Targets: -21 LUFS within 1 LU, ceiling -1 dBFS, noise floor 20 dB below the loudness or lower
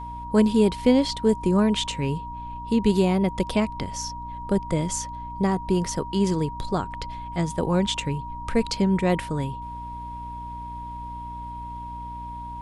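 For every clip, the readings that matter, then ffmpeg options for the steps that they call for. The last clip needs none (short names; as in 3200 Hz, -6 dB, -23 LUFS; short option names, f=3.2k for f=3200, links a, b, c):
hum 60 Hz; harmonics up to 300 Hz; hum level -37 dBFS; steady tone 950 Hz; tone level -34 dBFS; loudness -24.5 LUFS; peak -6.0 dBFS; loudness target -21.0 LUFS
-> -af "bandreject=f=60:t=h:w=4,bandreject=f=120:t=h:w=4,bandreject=f=180:t=h:w=4,bandreject=f=240:t=h:w=4,bandreject=f=300:t=h:w=4"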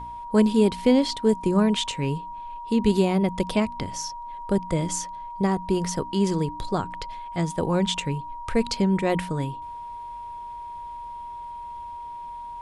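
hum none; steady tone 950 Hz; tone level -34 dBFS
-> -af "bandreject=f=950:w=30"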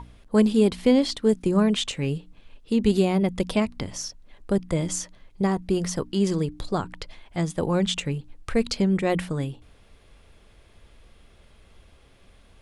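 steady tone none; loudness -24.5 LUFS; peak -7.0 dBFS; loudness target -21.0 LUFS
-> -af "volume=3.5dB"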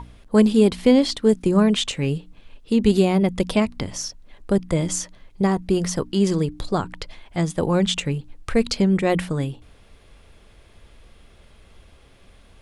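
loudness -21.0 LUFS; peak -3.5 dBFS; noise floor -51 dBFS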